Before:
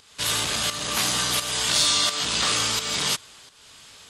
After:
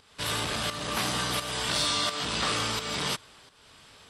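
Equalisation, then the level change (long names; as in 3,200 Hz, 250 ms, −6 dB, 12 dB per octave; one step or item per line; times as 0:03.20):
high-shelf EQ 2,400 Hz −9.5 dB
notch filter 6,700 Hz, Q 8.4
0.0 dB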